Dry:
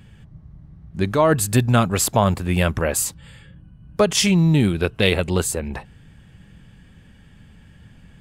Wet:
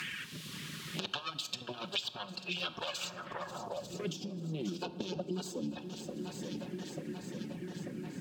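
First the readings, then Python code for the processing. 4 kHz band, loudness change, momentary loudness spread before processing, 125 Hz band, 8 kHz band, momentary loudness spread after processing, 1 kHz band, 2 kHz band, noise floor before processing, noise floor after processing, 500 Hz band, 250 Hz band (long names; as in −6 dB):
−10.5 dB, −20.5 dB, 11 LU, −23.0 dB, −22.5 dB, 6 LU, −18.5 dB, −15.5 dB, −49 dBFS, −49 dBFS, −19.5 dB, −17.5 dB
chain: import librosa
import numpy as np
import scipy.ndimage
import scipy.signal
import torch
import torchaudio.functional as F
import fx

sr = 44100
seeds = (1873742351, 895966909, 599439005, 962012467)

p1 = fx.lower_of_two(x, sr, delay_ms=5.5)
p2 = fx.dereverb_blind(p1, sr, rt60_s=1.5)
p3 = scipy.signal.sosfilt(scipy.signal.butter(2, 97.0, 'highpass', fs=sr, output='sos'), p2)
p4 = fx.over_compress(p3, sr, threshold_db=-26.0, ratio=-0.5)
p5 = fx.env_phaser(p4, sr, low_hz=550.0, high_hz=2000.0, full_db=-29.0)
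p6 = fx.dmg_noise_colour(p5, sr, seeds[0], colour='blue', level_db=-64.0)
p7 = p6 + fx.echo_swing(p6, sr, ms=891, ratio=1.5, feedback_pct=56, wet_db=-17.0, dry=0)
p8 = fx.room_shoebox(p7, sr, seeds[1], volume_m3=500.0, walls='mixed', distance_m=0.31)
p9 = fx.filter_sweep_bandpass(p8, sr, from_hz=3200.0, to_hz=300.0, start_s=2.86, end_s=4.19, q=2.3)
p10 = fx.band_squash(p9, sr, depth_pct=100)
y = p10 * 10.0 ** (4.5 / 20.0)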